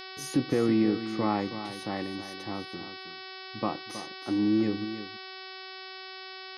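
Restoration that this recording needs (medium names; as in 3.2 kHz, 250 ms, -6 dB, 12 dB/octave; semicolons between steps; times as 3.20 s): de-hum 377.6 Hz, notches 14; inverse comb 320 ms -11.5 dB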